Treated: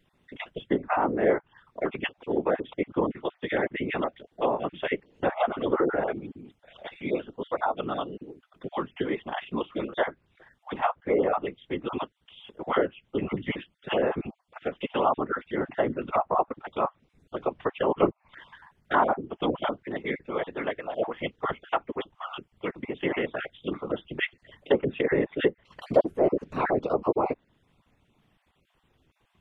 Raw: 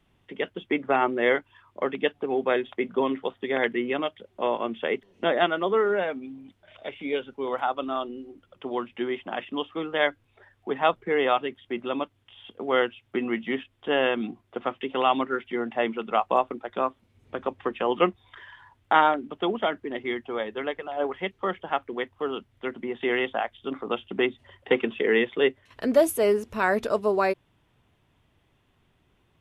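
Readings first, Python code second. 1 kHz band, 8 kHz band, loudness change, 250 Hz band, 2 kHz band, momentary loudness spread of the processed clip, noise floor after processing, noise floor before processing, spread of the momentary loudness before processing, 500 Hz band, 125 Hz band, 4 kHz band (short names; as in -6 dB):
-2.5 dB, n/a, -2.0 dB, -1.0 dB, -4.5 dB, 12 LU, -71 dBFS, -67 dBFS, 11 LU, -2.0 dB, +5.5 dB, -6.0 dB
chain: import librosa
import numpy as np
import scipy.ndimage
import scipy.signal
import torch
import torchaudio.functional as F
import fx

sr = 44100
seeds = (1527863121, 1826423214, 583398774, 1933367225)

y = fx.spec_dropout(x, sr, seeds[0], share_pct=25)
y = fx.env_lowpass_down(y, sr, base_hz=1100.0, full_db=-20.0)
y = fx.whisperise(y, sr, seeds[1])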